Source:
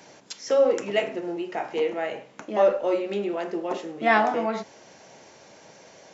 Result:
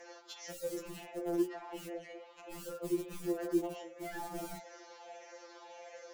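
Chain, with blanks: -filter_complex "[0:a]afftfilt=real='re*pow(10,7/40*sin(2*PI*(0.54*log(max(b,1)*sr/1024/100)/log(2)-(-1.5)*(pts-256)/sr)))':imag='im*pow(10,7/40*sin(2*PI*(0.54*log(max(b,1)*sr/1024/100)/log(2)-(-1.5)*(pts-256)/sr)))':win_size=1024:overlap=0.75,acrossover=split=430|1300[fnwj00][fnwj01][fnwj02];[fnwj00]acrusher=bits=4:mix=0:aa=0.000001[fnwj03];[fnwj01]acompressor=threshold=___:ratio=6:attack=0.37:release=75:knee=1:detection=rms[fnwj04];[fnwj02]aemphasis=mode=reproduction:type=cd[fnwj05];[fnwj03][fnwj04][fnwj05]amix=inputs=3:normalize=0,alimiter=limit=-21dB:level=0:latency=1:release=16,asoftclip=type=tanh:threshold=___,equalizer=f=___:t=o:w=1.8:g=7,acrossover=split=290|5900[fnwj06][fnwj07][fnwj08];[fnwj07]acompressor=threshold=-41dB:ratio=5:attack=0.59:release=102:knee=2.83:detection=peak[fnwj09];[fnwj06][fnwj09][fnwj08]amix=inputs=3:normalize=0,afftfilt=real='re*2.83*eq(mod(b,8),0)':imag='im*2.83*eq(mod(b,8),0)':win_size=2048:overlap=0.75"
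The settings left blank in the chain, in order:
-34dB, -26.5dB, 400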